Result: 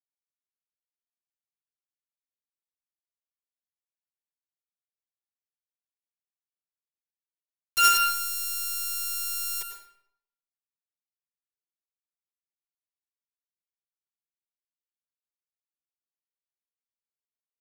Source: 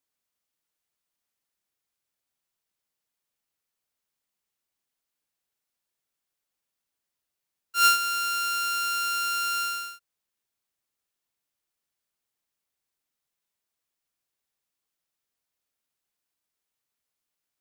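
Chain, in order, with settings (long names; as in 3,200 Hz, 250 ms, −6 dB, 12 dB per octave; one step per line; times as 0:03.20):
low-shelf EQ 110 Hz −6.5 dB
bit reduction 4 bits
on a send: convolution reverb RT60 0.75 s, pre-delay 88 ms, DRR 5 dB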